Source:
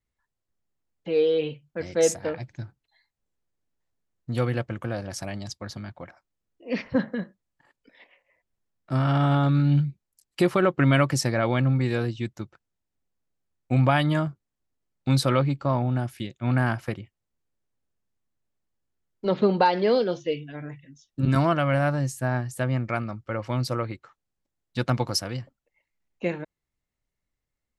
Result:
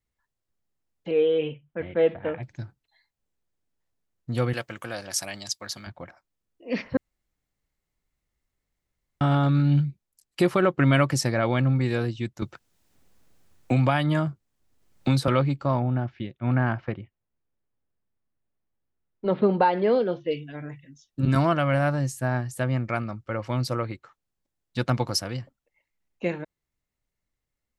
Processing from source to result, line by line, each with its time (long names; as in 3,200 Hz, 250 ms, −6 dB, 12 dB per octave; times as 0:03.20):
0:01.11–0:02.43: Butterworth low-pass 3,400 Hz 72 dB per octave
0:04.53–0:05.87: spectral tilt +3.5 dB per octave
0:06.97–0:09.21: fill with room tone
0:12.42–0:15.28: multiband upward and downward compressor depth 70%
0:15.80–0:20.31: Gaussian smoothing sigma 2.6 samples